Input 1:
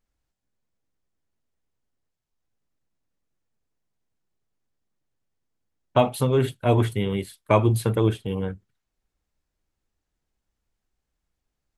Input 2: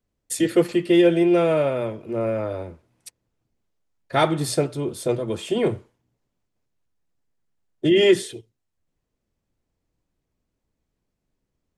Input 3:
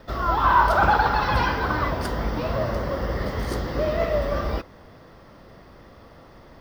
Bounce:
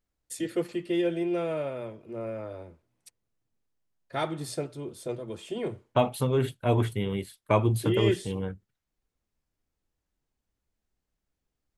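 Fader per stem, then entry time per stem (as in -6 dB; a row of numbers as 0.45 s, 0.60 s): -4.5 dB, -11.0 dB, mute; 0.00 s, 0.00 s, mute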